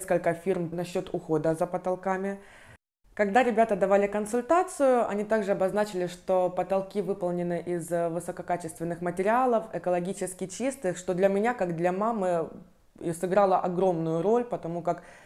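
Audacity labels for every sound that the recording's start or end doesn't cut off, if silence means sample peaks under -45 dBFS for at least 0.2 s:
3.170000	12.630000	sound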